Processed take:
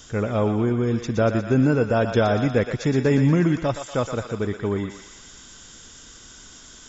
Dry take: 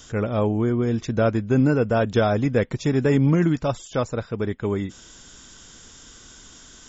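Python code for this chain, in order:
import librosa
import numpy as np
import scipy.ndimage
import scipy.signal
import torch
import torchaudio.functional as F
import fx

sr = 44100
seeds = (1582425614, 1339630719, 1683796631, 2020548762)

y = fx.echo_thinned(x, sr, ms=119, feedback_pct=68, hz=780.0, wet_db=-6)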